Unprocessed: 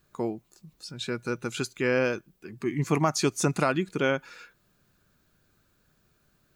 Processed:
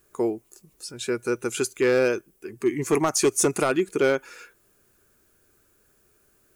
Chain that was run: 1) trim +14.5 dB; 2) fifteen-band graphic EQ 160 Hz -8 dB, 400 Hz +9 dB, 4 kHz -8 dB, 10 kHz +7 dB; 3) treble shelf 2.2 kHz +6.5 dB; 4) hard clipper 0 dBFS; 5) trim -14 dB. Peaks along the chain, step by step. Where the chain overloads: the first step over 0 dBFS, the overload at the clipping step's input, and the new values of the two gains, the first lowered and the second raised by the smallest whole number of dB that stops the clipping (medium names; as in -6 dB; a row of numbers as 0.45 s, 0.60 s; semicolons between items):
+3.0 dBFS, +6.0 dBFS, +7.0 dBFS, 0.0 dBFS, -14.0 dBFS; step 1, 7.0 dB; step 1 +7.5 dB, step 5 -7 dB